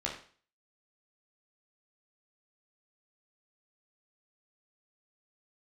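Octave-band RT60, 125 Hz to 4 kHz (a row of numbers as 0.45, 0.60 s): 0.45, 0.45, 0.45, 0.45, 0.45, 0.45 s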